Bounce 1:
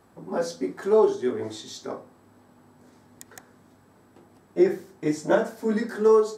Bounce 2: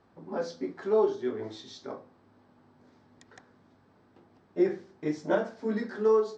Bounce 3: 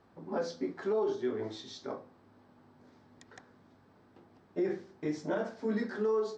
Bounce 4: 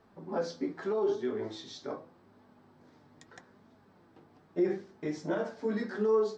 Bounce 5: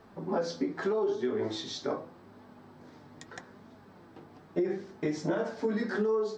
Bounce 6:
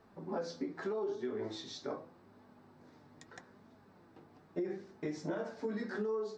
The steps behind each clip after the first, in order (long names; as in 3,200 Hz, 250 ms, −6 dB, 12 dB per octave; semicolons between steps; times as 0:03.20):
low-pass filter 5,400 Hz 24 dB per octave; level −5.5 dB
brickwall limiter −23.5 dBFS, peak gain reduction 10.5 dB
flanger 0.81 Hz, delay 4.4 ms, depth 2.6 ms, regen +61%; level +5 dB
downward compressor 6 to 1, threshold −34 dBFS, peak gain reduction 10.5 dB; level +7.5 dB
notch filter 3,200 Hz, Q 17; level −7.5 dB